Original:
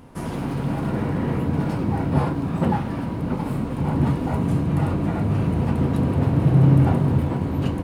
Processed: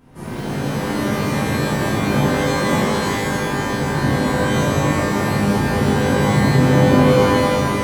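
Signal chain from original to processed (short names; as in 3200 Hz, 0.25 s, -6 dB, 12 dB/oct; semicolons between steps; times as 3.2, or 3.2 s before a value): shimmer reverb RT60 1.5 s, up +12 st, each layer -2 dB, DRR -9 dB; gain -8.5 dB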